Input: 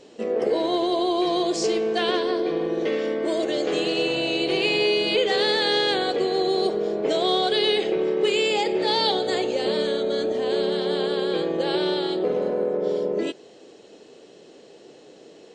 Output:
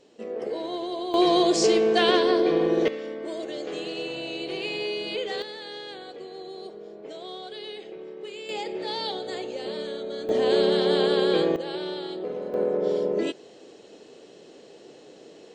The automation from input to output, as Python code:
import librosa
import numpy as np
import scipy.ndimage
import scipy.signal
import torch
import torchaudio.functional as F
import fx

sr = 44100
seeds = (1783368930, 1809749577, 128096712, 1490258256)

y = fx.gain(x, sr, db=fx.steps((0.0, -8.5), (1.14, 3.0), (2.88, -9.0), (5.42, -17.0), (8.49, -9.0), (10.29, 2.5), (11.56, -8.5), (12.54, -0.5)))